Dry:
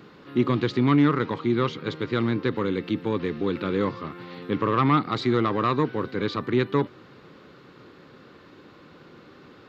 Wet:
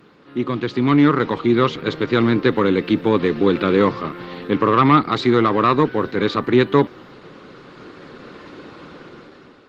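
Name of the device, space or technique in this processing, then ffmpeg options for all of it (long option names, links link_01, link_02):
video call: -af "highpass=frequency=150:poles=1,dynaudnorm=framelen=350:gausssize=5:maxgain=13dB" -ar 48000 -c:a libopus -b:a 20k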